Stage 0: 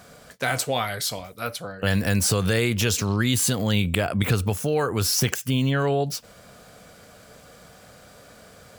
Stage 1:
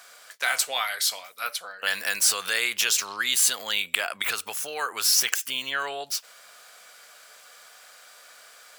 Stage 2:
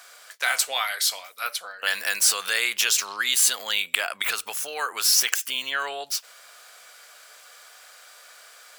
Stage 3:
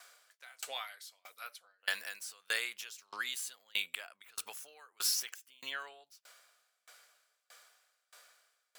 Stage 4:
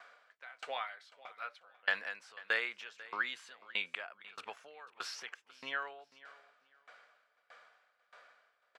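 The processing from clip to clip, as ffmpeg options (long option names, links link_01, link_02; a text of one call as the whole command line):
ffmpeg -i in.wav -af "highpass=1200,volume=3dB" out.wav
ffmpeg -i in.wav -af "lowshelf=frequency=200:gain=-12,volume=1.5dB" out.wav
ffmpeg -i in.wav -af "aeval=exprs='val(0)*pow(10,-31*if(lt(mod(1.6*n/s,1),2*abs(1.6)/1000),1-mod(1.6*n/s,1)/(2*abs(1.6)/1000),(mod(1.6*n/s,1)-2*abs(1.6)/1000)/(1-2*abs(1.6)/1000))/20)':channel_layout=same,volume=-7dB" out.wav
ffmpeg -i in.wav -af "highpass=100,lowpass=2000,aecho=1:1:493|986:0.112|0.0247,volume=5.5dB" out.wav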